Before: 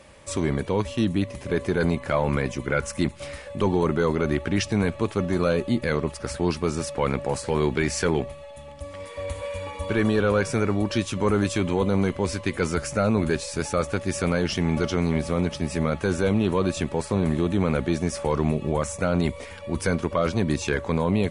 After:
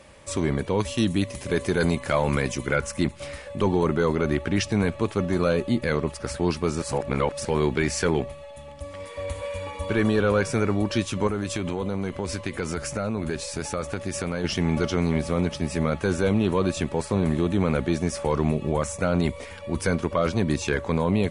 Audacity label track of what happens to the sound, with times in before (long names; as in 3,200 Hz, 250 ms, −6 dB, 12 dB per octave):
0.800000	2.760000	high-shelf EQ 3,900 Hz +10 dB
6.820000	7.450000	reverse
11.270000	14.440000	downward compressor, threshold −23 dBFS